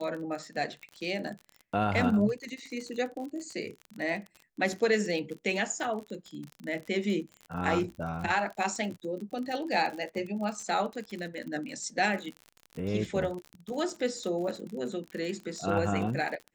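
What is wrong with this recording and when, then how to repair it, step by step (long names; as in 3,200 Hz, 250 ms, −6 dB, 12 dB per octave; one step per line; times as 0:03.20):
surface crackle 42 per second −36 dBFS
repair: click removal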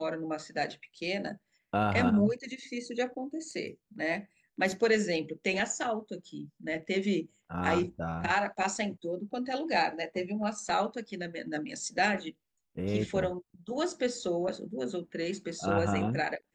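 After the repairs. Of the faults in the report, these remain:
none of them is left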